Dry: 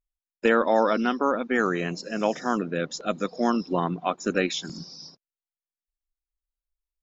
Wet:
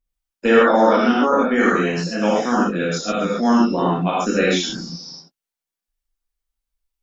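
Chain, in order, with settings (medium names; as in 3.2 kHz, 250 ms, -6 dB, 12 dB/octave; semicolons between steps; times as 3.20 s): gated-style reverb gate 160 ms flat, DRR -6.5 dB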